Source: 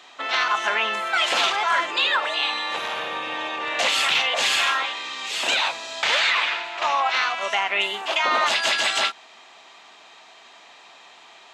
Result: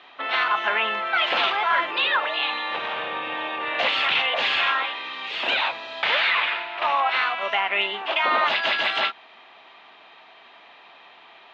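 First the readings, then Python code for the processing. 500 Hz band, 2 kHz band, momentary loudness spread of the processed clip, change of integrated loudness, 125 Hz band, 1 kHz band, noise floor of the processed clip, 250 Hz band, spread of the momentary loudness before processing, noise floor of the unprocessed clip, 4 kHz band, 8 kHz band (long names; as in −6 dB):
0.0 dB, 0.0 dB, 8 LU, −1.0 dB, can't be measured, 0.0 dB, −50 dBFS, 0.0 dB, 8 LU, −49 dBFS, −2.5 dB, below −20 dB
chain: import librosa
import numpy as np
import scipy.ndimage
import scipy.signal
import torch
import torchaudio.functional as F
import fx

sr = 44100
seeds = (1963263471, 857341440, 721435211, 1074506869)

y = scipy.signal.sosfilt(scipy.signal.butter(4, 3500.0, 'lowpass', fs=sr, output='sos'), x)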